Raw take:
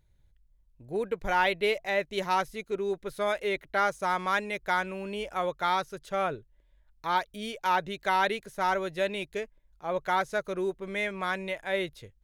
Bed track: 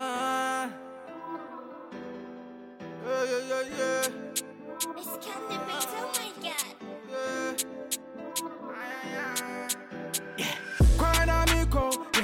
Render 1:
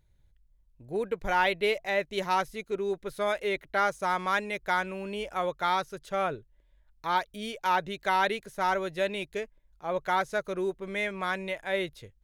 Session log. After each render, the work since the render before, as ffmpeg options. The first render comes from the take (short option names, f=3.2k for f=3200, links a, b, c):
-af anull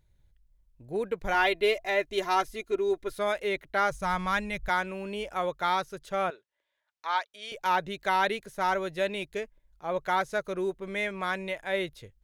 -filter_complex "[0:a]asettb=1/sr,asplit=3[a][b][c];[a]atrim=end=1.344[d];[b]atrim=start=1.34:end=3.19,asetpts=PTS-STARTPTS,afade=t=in:d=0.004:c=qsin,afade=t=out:st=1.846:d=0.004:c=qsin,aecho=1:1:2.9:0.65,atrim=end_sample=81585[e];[c]atrim=start=3.186[f];[d][e]acrossfade=d=0.004:c1=hsin:c2=qsin[g];[g][f]acrossfade=d=0.004:c1=qsin:c2=hsin,asplit=3[h][i][j];[h]afade=t=out:st=3.9:d=0.02[k];[i]asubboost=boost=11.5:cutoff=110,afade=t=in:st=3.9:d=0.02,afade=t=out:st=4.68:d=0.02[l];[j]afade=t=in:st=4.68:d=0.02[m];[k][l][m]amix=inputs=3:normalize=0,asettb=1/sr,asplit=3[n][o][p];[n]atrim=end=6.304[q];[o]atrim=start=6.3:end=7.52,asetpts=PTS-STARTPTS,afade=t=in:d=0.004:c=qsin,afade=t=out:st=1.216:d=0.004:c=qsin,highpass=750,lowpass=6.8k[r];[p]atrim=start=7.516[s];[q][r]acrossfade=d=0.004:c1=hsin:c2=qsin[t];[t][s]acrossfade=d=0.004:c1=qsin:c2=hsin"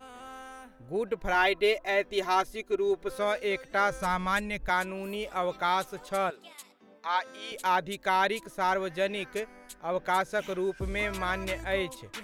-filter_complex "[1:a]volume=-16dB[a];[0:a][a]amix=inputs=2:normalize=0"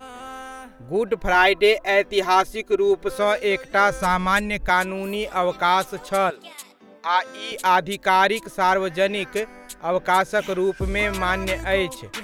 -af "volume=8.5dB"